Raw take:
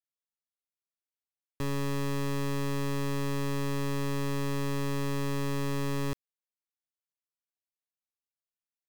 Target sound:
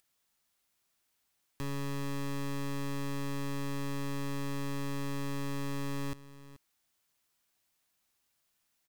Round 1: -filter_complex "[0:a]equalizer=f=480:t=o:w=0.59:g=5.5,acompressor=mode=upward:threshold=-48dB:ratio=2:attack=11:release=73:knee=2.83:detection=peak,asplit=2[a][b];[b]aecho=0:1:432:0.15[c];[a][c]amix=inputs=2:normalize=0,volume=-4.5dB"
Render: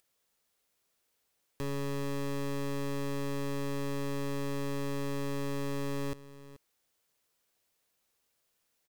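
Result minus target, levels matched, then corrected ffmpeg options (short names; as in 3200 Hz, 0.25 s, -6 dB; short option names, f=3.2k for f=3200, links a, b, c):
500 Hz band +5.0 dB
-filter_complex "[0:a]equalizer=f=480:t=o:w=0.59:g=-4,acompressor=mode=upward:threshold=-48dB:ratio=2:attack=11:release=73:knee=2.83:detection=peak,asplit=2[a][b];[b]aecho=0:1:432:0.15[c];[a][c]amix=inputs=2:normalize=0,volume=-4.5dB"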